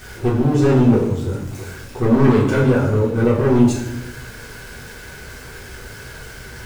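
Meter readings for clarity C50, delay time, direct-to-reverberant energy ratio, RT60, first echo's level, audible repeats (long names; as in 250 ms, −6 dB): 4.0 dB, no echo audible, −6.0 dB, 0.90 s, no echo audible, no echo audible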